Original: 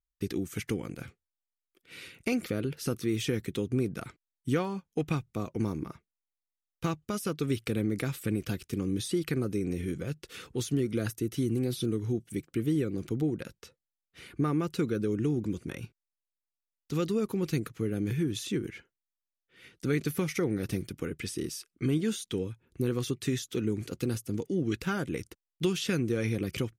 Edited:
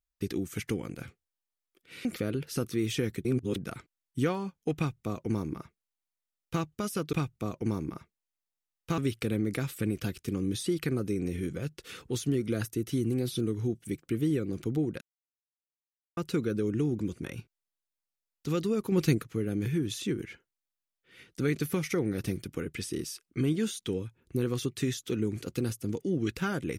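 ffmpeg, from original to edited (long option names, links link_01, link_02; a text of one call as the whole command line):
ffmpeg -i in.wav -filter_complex "[0:a]asplit=10[link_01][link_02][link_03][link_04][link_05][link_06][link_07][link_08][link_09][link_10];[link_01]atrim=end=2.052[link_11];[link_02]atrim=start=2.348:end=3.552[link_12];[link_03]atrim=start=3.548:end=3.862,asetpts=PTS-STARTPTS,areverse[link_13];[link_04]atrim=start=3.858:end=7.432[link_14];[link_05]atrim=start=5.068:end=6.922[link_15];[link_06]atrim=start=7.428:end=13.46,asetpts=PTS-STARTPTS,afade=type=out:start_time=6.028:duration=0.004:curve=hsin[link_16];[link_07]atrim=start=13.46:end=14.62,asetpts=PTS-STARTPTS,volume=0[link_17];[link_08]atrim=start=14.62:end=17.372,asetpts=PTS-STARTPTS,afade=type=in:duration=0.004:curve=hsin[link_18];[link_09]atrim=start=17.368:end=17.632,asetpts=PTS-STARTPTS,volume=5dB[link_19];[link_10]atrim=start=17.628[link_20];[link_11][link_12]acrossfade=duration=0.004:curve1=hsin:curve2=hsin[link_21];[link_21][link_13]acrossfade=duration=0.004:curve1=hsin:curve2=hsin[link_22];[link_22][link_14]acrossfade=duration=0.004:curve1=hsin:curve2=hsin[link_23];[link_23][link_15]acrossfade=duration=0.004:curve1=hsin:curve2=hsin[link_24];[link_16][link_17][link_18]concat=n=3:v=0:a=1[link_25];[link_24][link_25]acrossfade=duration=0.004:curve1=hsin:curve2=hsin[link_26];[link_26][link_19]acrossfade=duration=0.004:curve1=hsin:curve2=hsin[link_27];[link_27][link_20]acrossfade=duration=0.004:curve1=hsin:curve2=hsin" out.wav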